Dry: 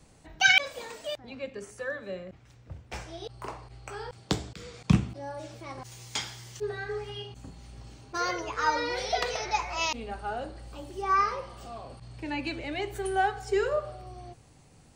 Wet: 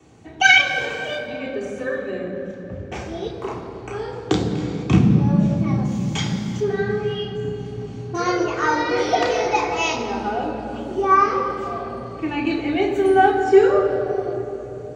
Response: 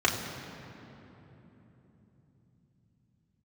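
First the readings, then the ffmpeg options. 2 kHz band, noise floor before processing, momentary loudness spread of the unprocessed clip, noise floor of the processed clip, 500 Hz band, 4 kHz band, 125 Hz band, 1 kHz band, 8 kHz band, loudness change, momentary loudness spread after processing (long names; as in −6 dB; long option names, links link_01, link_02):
+8.5 dB, −56 dBFS, 18 LU, −35 dBFS, +13.5 dB, +6.0 dB, +12.5 dB, +9.5 dB, +4.0 dB, +9.5 dB, 16 LU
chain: -filter_complex "[0:a]equalizer=frequency=330:width_type=o:width=1.7:gain=8,aeval=exprs='0.596*(cos(1*acos(clip(val(0)/0.596,-1,1)))-cos(1*PI/2))+0.00841*(cos(6*acos(clip(val(0)/0.596,-1,1)))-cos(6*PI/2))':channel_layout=same[link_01];[1:a]atrim=start_sample=2205[link_02];[link_01][link_02]afir=irnorm=-1:irlink=0,volume=-7dB"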